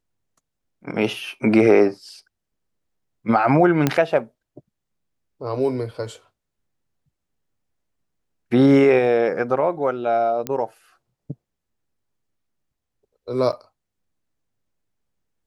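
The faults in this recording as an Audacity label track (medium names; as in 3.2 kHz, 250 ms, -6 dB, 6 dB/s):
3.870000	3.870000	pop -4 dBFS
10.470000	10.470000	pop -10 dBFS
13.520000	13.530000	dropout 7.8 ms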